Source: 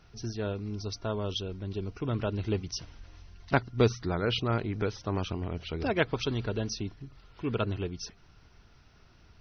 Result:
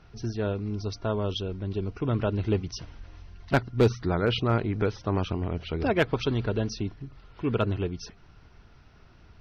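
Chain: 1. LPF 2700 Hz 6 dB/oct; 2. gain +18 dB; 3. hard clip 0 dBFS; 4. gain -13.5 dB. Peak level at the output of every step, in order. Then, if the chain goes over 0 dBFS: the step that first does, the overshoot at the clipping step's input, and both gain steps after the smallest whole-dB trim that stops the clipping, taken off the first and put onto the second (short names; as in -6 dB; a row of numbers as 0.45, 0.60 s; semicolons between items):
-10.5, +7.5, 0.0, -13.5 dBFS; step 2, 7.5 dB; step 2 +10 dB, step 4 -5.5 dB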